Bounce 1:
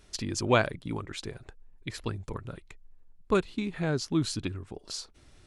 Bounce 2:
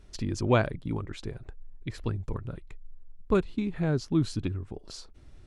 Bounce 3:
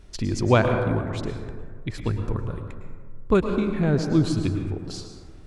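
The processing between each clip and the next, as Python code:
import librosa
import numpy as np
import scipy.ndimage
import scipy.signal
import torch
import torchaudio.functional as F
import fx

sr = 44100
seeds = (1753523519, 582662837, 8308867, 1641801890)

y1 = fx.tilt_eq(x, sr, slope=-2.0)
y1 = y1 * 10.0 ** (-2.0 / 20.0)
y2 = fx.rev_plate(y1, sr, seeds[0], rt60_s=1.7, hf_ratio=0.35, predelay_ms=95, drr_db=5.0)
y2 = y2 * 10.0 ** (5.0 / 20.0)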